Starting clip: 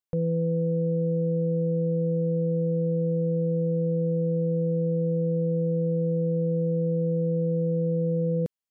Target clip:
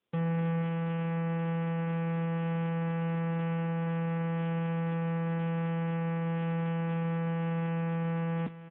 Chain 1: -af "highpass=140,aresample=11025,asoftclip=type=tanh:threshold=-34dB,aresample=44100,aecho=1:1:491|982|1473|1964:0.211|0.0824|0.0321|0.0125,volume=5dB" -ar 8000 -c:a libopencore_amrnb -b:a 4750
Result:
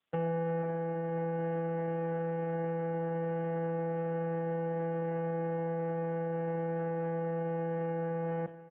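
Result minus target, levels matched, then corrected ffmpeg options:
250 Hz band -3.5 dB
-af "highpass=140,equalizer=f=240:w=0.62:g=13,aresample=11025,asoftclip=type=tanh:threshold=-34dB,aresample=44100,aecho=1:1:491|982|1473|1964:0.211|0.0824|0.0321|0.0125,volume=5dB" -ar 8000 -c:a libopencore_amrnb -b:a 4750

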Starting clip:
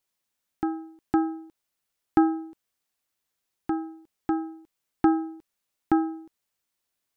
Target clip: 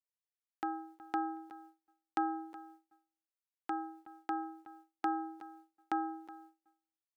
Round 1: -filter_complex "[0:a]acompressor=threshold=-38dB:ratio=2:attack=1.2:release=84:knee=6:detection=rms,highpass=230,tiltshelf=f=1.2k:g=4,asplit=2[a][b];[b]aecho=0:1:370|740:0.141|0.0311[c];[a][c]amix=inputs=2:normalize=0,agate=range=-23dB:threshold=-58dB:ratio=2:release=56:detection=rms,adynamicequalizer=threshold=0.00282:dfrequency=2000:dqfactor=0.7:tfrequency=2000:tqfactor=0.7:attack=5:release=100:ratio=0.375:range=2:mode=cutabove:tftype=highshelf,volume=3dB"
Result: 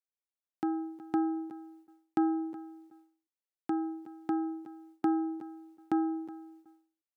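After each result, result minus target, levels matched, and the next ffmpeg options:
1000 Hz band -7.0 dB; compressor: peak gain reduction +4 dB
-filter_complex "[0:a]acompressor=threshold=-38dB:ratio=2:attack=1.2:release=84:knee=6:detection=rms,highpass=770,tiltshelf=f=1.2k:g=4,asplit=2[a][b];[b]aecho=0:1:370|740:0.141|0.0311[c];[a][c]amix=inputs=2:normalize=0,agate=range=-23dB:threshold=-58dB:ratio=2:release=56:detection=rms,adynamicequalizer=threshold=0.00282:dfrequency=2000:dqfactor=0.7:tfrequency=2000:tqfactor=0.7:attack=5:release=100:ratio=0.375:range=2:mode=cutabove:tftype=highshelf,volume=3dB"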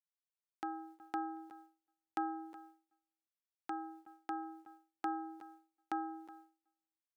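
compressor: peak gain reduction +4 dB
-filter_complex "[0:a]acompressor=threshold=-30dB:ratio=2:attack=1.2:release=84:knee=6:detection=rms,highpass=770,tiltshelf=f=1.2k:g=4,asplit=2[a][b];[b]aecho=0:1:370|740:0.141|0.0311[c];[a][c]amix=inputs=2:normalize=0,agate=range=-23dB:threshold=-58dB:ratio=2:release=56:detection=rms,adynamicequalizer=threshold=0.00282:dfrequency=2000:dqfactor=0.7:tfrequency=2000:tqfactor=0.7:attack=5:release=100:ratio=0.375:range=2:mode=cutabove:tftype=highshelf,volume=3dB"

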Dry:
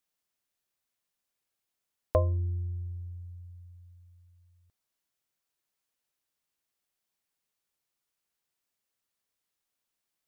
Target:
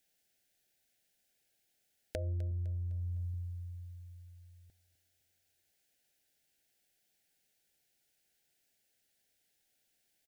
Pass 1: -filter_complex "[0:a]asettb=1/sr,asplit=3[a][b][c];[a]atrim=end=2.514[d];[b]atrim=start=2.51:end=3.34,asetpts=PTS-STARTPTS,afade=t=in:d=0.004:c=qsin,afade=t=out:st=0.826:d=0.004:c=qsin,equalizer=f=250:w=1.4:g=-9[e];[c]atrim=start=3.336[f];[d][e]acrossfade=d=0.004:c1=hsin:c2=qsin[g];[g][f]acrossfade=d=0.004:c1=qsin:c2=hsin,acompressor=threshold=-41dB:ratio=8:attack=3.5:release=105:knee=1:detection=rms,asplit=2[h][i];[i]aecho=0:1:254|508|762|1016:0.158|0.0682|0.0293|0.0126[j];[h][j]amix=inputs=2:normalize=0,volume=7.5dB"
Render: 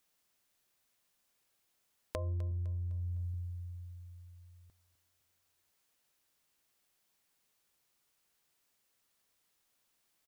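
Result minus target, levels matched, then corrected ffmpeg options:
1000 Hz band +9.0 dB
-filter_complex "[0:a]asettb=1/sr,asplit=3[a][b][c];[a]atrim=end=2.514[d];[b]atrim=start=2.51:end=3.34,asetpts=PTS-STARTPTS,afade=t=in:d=0.004:c=qsin,afade=t=out:st=0.826:d=0.004:c=qsin,equalizer=f=250:w=1.4:g=-9[e];[c]atrim=start=3.336[f];[d][e]acrossfade=d=0.004:c1=hsin:c2=qsin[g];[g][f]acrossfade=d=0.004:c1=qsin:c2=hsin,acompressor=threshold=-41dB:ratio=8:attack=3.5:release=105:knee=1:detection=rms,asuperstop=centerf=1100:order=8:qfactor=1.9,asplit=2[h][i];[i]aecho=0:1:254|508|762|1016:0.158|0.0682|0.0293|0.0126[j];[h][j]amix=inputs=2:normalize=0,volume=7.5dB"

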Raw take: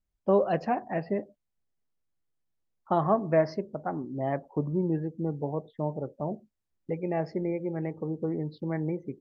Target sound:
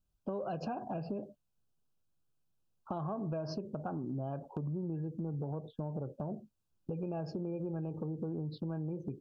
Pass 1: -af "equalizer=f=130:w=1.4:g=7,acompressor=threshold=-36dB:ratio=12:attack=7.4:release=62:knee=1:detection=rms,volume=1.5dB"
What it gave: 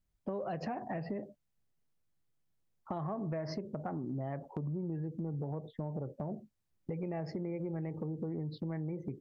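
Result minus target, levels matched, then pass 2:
2000 Hz band +5.5 dB
-af "equalizer=f=130:w=1.4:g=7,acompressor=threshold=-36dB:ratio=12:attack=7.4:release=62:knee=1:detection=rms,asuperstop=centerf=2000:order=20:qfactor=2.7,volume=1.5dB"

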